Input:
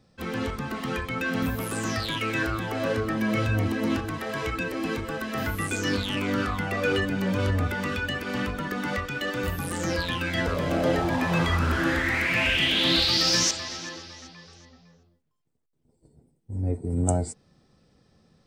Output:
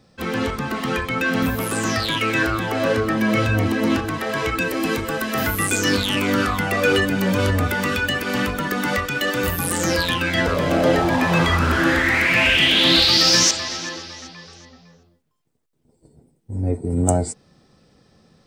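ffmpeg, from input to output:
-filter_complex "[0:a]asettb=1/sr,asplit=3[s0][s1][s2];[s0]atrim=end=4.584[s3];[s1]atrim=start=4.58:end=10.14,asetpts=PTS-STARTPTS,afade=t=in:d=0.004:c=qsin,afade=t=out:st=5.556:d=0.004:c=qsin,highshelf=f=7900:g=9.5[s4];[s2]atrim=start=10.136[s5];[s3][s4]acrossfade=d=0.004:c1=hsin:c2=qsin[s6];[s6][s5]acrossfade=d=0.004:c1=qsin:c2=hsin,lowshelf=f=140:g=-5,acontrast=70,volume=1.12"

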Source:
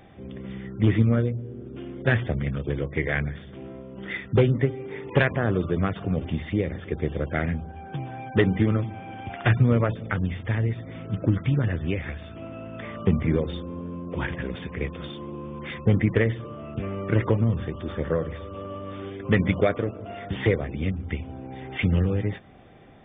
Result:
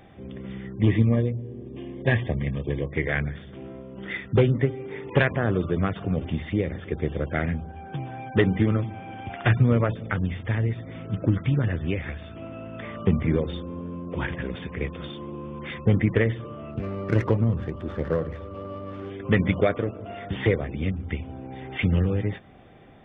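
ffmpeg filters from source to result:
-filter_complex "[0:a]asettb=1/sr,asplit=3[s0][s1][s2];[s0]atrim=end=0.734[s3];[s1]atrim=start=0.73:end=2.93,asetpts=PTS-STARTPTS,afade=t=in:d=0.004:c=qsin,afade=t=out:st=2.196:d=0.004:c=qsin,asuperstop=centerf=1400:order=12:qfactor=3.9[s4];[s2]atrim=start=2.926[s5];[s3][s4]acrossfade=d=0.004:c1=hsin:c2=qsin[s6];[s6][s5]acrossfade=d=0.004:c1=qsin:c2=hsin,asettb=1/sr,asplit=3[s7][s8][s9];[s7]atrim=end=16.714[s10];[s8]atrim=start=16.71:end=19.1,asetpts=PTS-STARTPTS,afade=t=in:d=0.004:c=qsin,afade=t=out:st=2.386:d=0.004:c=qsin,adynamicsmooth=sensitivity=4.5:basefreq=1900[s11];[s9]atrim=start=19.096[s12];[s10][s11]acrossfade=d=0.004:c1=hsin:c2=qsin[s13];[s13][s12]acrossfade=d=0.004:c1=qsin:c2=hsin"

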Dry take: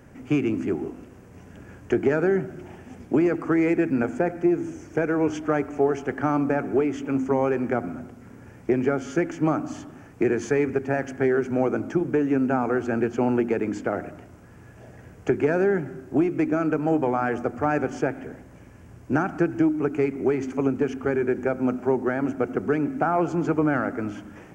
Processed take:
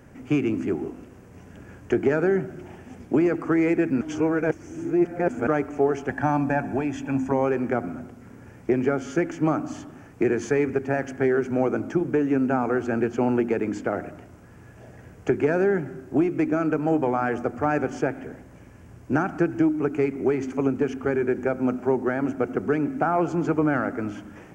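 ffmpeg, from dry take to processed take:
-filter_complex "[0:a]asettb=1/sr,asplit=3[s0][s1][s2];[s0]atrim=end=6.094[s3];[s1]atrim=start=6.09:end=7.32,asetpts=PTS-STARTPTS,afade=t=in:d=0.004:c=qsin,afade=t=out:st=1.226:d=0.004:c=qsin,aecho=1:1:1.2:0.65,atrim=end_sample=54243[s4];[s2]atrim=start=7.316[s5];[s3][s4]acrossfade=d=0.004:c1=hsin:c2=qsin[s6];[s6][s5]acrossfade=d=0.004:c1=qsin:c2=hsin,asplit=3[s7][s8][s9];[s7]atrim=end=4.012[s10];[s8]atrim=start=4.008:end=5.472,asetpts=PTS-STARTPTS,areverse[s11];[s9]atrim=start=5.468[s12];[s10][s11]acrossfade=d=0.004:c1=hsin:c2=hsin[s13];[s13][s12]acrossfade=d=0.004:c1=hsin:c2=hsin"

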